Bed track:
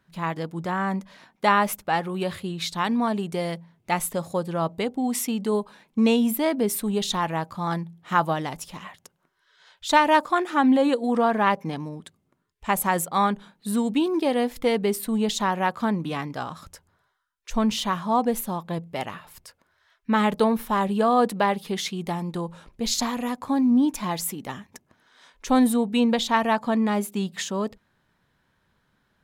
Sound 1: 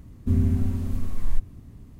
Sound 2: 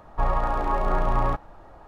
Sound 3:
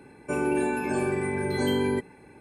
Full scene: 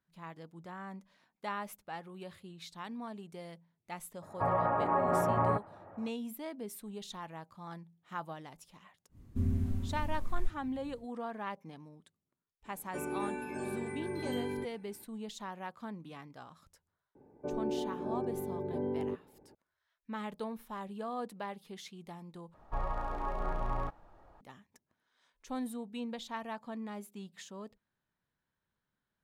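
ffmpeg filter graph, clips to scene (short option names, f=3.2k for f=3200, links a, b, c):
-filter_complex "[2:a]asplit=2[a][b];[3:a]asplit=2[c][d];[0:a]volume=-19dB[e];[a]highpass=f=100:w=0.5412,highpass=f=100:w=1.3066,equalizer=f=100:t=q:w=4:g=7,equalizer=f=180:t=q:w=4:g=4,equalizer=f=590:t=q:w=4:g=5,lowpass=f=2.2k:w=0.5412,lowpass=f=2.2k:w=1.3066[f];[d]lowpass=f=660:t=q:w=1.7[g];[e]asplit=2[h][i];[h]atrim=end=22.544[j];[b]atrim=end=1.87,asetpts=PTS-STARTPTS,volume=-12dB[k];[i]atrim=start=24.406[l];[f]atrim=end=1.87,asetpts=PTS-STARTPTS,volume=-4.5dB,afade=t=in:d=0.004:c=hsin,afade=t=out:st=1.866:d=0.004:c=hsin,adelay=4220[m];[1:a]atrim=end=1.99,asetpts=PTS-STARTPTS,volume=-10dB,afade=t=in:d=0.1,afade=t=out:st=1.89:d=0.1,adelay=9090[n];[c]atrim=end=2.4,asetpts=PTS-STARTPTS,volume=-12dB,afade=t=in:d=0.004:c=hsin,afade=t=out:st=2.396:d=0.004:c=hsin,adelay=12650[o];[g]atrim=end=2.4,asetpts=PTS-STARTPTS,volume=-11.5dB,afade=t=in:d=0.004:c=hsin,afade=t=out:st=2.396:d=0.004:c=hsin,adelay=17150[p];[j][k]acrossfade=d=0.004:c1=hsin:c2=hsin[q];[q][l]acrossfade=d=0.004:c1=hsin:c2=hsin[r];[r][m][n][o][p]amix=inputs=5:normalize=0"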